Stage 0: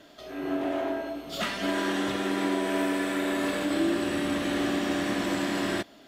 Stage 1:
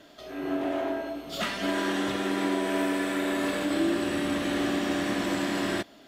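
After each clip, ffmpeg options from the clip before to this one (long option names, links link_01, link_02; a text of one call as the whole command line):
ffmpeg -i in.wav -af anull out.wav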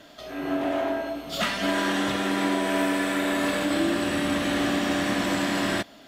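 ffmpeg -i in.wav -af "equalizer=frequency=370:width_type=o:width=0.54:gain=-6,volume=4.5dB" out.wav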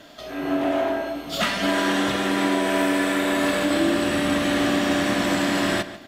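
ffmpeg -i in.wav -filter_complex "[0:a]asplit=2[link_01][link_02];[link_02]adelay=144,lowpass=frequency=5000:poles=1,volume=-14dB,asplit=2[link_03][link_04];[link_04]adelay=144,lowpass=frequency=5000:poles=1,volume=0.32,asplit=2[link_05][link_06];[link_06]adelay=144,lowpass=frequency=5000:poles=1,volume=0.32[link_07];[link_01][link_03][link_05][link_07]amix=inputs=4:normalize=0,volume=3dB" out.wav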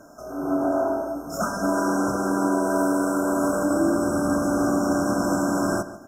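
ffmpeg -i in.wav -af "afftfilt=real='re*(1-between(b*sr/4096,1600,5200))':imag='im*(1-between(b*sr/4096,1600,5200))':win_size=4096:overlap=0.75" out.wav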